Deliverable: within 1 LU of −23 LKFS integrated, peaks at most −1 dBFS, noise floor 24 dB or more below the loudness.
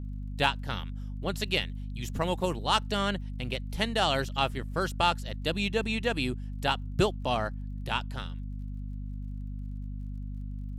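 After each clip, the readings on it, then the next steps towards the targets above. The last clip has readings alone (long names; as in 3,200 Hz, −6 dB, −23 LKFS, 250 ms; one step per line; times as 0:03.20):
crackle rate 35 per second; mains hum 50 Hz; hum harmonics up to 250 Hz; level of the hum −34 dBFS; integrated loudness −31.0 LKFS; sample peak −10.5 dBFS; target loudness −23.0 LKFS
→ click removal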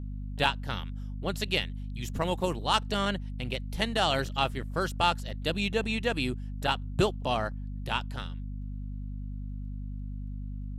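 crackle rate 0 per second; mains hum 50 Hz; hum harmonics up to 250 Hz; level of the hum −34 dBFS
→ hum removal 50 Hz, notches 5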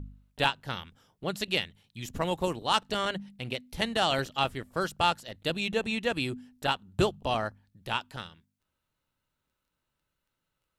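mains hum none found; integrated loudness −30.5 LKFS; sample peak −10.5 dBFS; target loudness −23.0 LKFS
→ level +7.5 dB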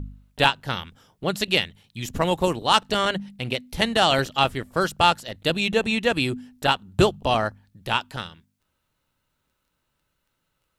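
integrated loudness −23.0 LKFS; sample peak −3.0 dBFS; background noise floor −76 dBFS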